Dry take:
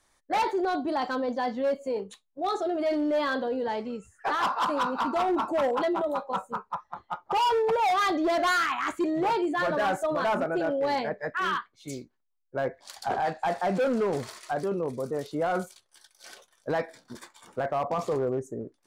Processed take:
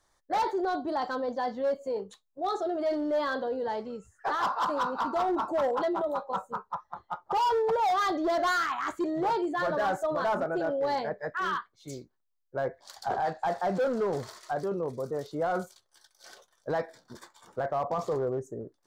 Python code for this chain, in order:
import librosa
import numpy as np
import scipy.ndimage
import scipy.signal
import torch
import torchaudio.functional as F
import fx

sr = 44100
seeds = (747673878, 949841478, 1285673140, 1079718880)

y = fx.graphic_eq_15(x, sr, hz=(250, 2500, 10000), db=(-5, -9, -7))
y = F.gain(torch.from_numpy(y), -1.0).numpy()